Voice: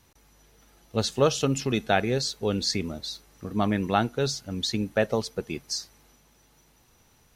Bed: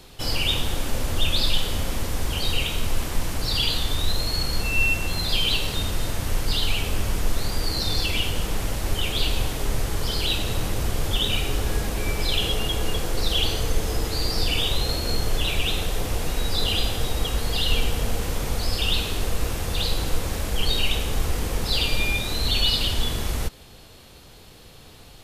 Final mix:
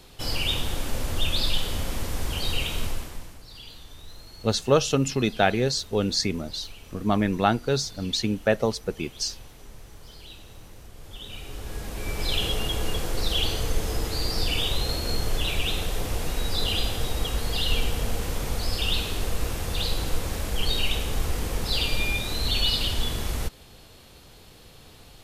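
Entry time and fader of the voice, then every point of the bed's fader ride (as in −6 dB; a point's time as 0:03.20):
3.50 s, +2.0 dB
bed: 0:02.84 −3 dB
0:03.45 −21 dB
0:10.92 −21 dB
0:12.31 −2.5 dB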